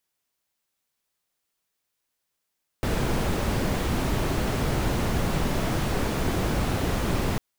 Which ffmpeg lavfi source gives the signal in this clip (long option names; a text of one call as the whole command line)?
ffmpeg -f lavfi -i "anoisesrc=color=brown:amplitude=0.279:duration=4.55:sample_rate=44100:seed=1" out.wav